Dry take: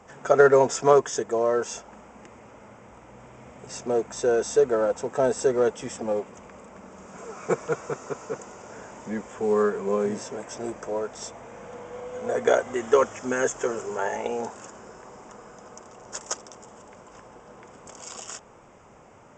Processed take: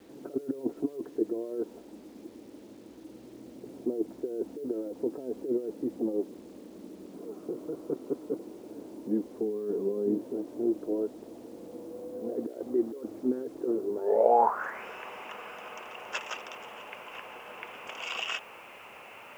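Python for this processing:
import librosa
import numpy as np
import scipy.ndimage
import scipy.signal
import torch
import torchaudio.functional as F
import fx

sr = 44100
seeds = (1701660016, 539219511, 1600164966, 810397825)

y = scipy.signal.sosfilt(scipy.signal.butter(2, 93.0, 'highpass', fs=sr, output='sos'), x)
y = fx.peak_eq(y, sr, hz=130.0, db=-14.5, octaves=2.7)
y = fx.over_compress(y, sr, threshold_db=-32.0, ratio=-1.0)
y = fx.filter_sweep_lowpass(y, sr, from_hz=310.0, to_hz=2700.0, start_s=13.98, end_s=14.86, q=6.2)
y = fx.quant_dither(y, sr, seeds[0], bits=10, dither='none')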